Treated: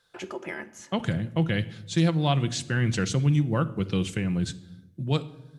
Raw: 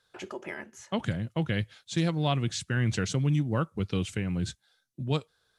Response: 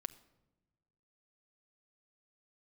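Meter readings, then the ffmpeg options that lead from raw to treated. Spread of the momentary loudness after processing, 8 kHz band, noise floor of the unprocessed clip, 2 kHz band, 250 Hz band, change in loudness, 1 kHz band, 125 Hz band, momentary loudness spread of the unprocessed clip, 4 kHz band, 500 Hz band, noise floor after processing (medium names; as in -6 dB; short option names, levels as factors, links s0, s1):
14 LU, +2.5 dB, -73 dBFS, +3.0 dB, +4.0 dB, +3.5 dB, +3.0 dB, +3.5 dB, 12 LU, +3.0 dB, +3.0 dB, -55 dBFS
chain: -filter_complex "[1:a]atrim=start_sample=2205[s0];[0:a][s0]afir=irnorm=-1:irlink=0,volume=1.88"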